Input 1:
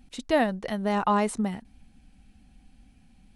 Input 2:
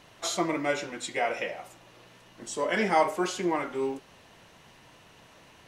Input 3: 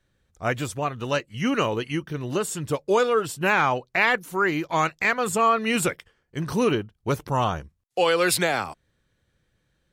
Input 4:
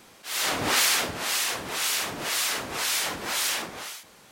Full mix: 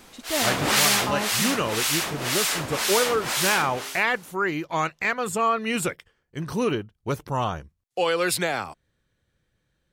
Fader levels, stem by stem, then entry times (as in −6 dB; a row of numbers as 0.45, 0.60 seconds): −6.0, −19.5, −2.5, +2.0 decibels; 0.00, 0.00, 0.00, 0.00 seconds